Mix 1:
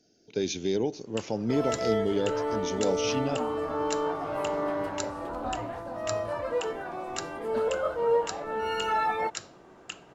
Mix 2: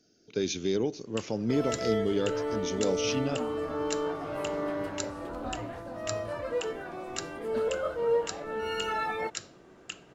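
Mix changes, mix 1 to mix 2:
speech: add peaking EQ 1.2 kHz +13 dB 0.43 oct; master: add peaking EQ 880 Hz -7 dB 1 oct

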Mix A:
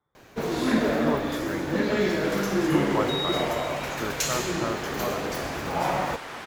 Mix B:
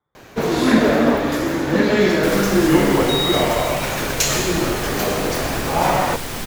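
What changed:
first sound +8.0 dB; second sound: remove band-pass filter 1.2 kHz, Q 0.78; reverb: on, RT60 0.45 s

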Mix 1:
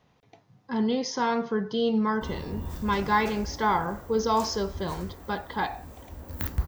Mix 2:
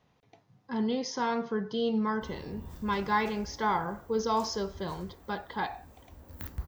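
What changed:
speech -4.0 dB; background -9.5 dB

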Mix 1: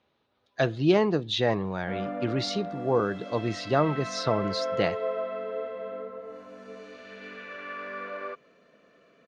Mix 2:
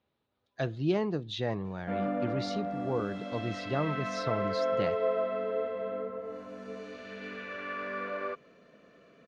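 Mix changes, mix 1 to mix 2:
speech -9.5 dB; master: add bass shelf 250 Hz +7 dB

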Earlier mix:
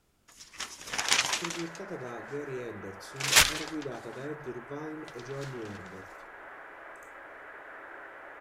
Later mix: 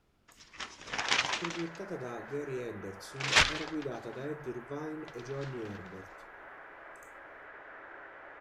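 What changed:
first sound: add distance through air 130 m; second sound -3.0 dB

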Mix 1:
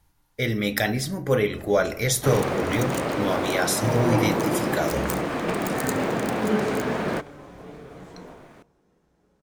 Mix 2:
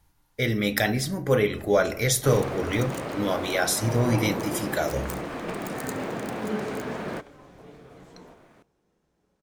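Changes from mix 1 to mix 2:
first sound: send -9.5 dB; second sound -6.5 dB

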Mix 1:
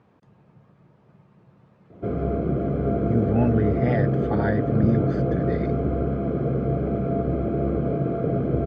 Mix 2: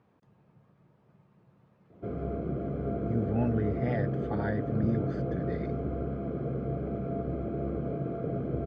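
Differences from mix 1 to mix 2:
speech -7.5 dB; background -9.0 dB

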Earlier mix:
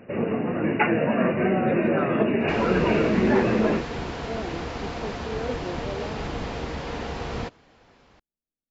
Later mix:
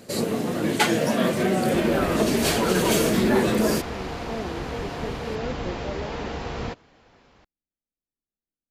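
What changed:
first sound: remove brick-wall FIR low-pass 2.9 kHz; second sound: entry -0.75 s

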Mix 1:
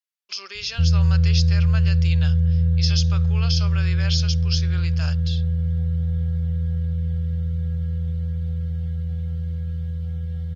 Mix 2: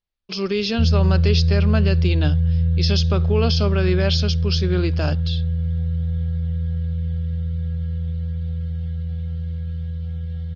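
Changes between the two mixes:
speech: remove high-pass 1.5 kHz 12 dB/octave; master: add resonant low-pass 4.1 kHz, resonance Q 1.5

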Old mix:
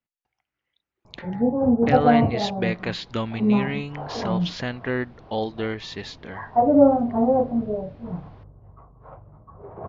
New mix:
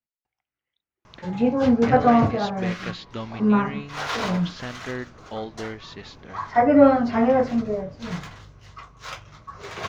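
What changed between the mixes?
speech -6.0 dB; first sound: remove Chebyshev low-pass 820 Hz, order 3

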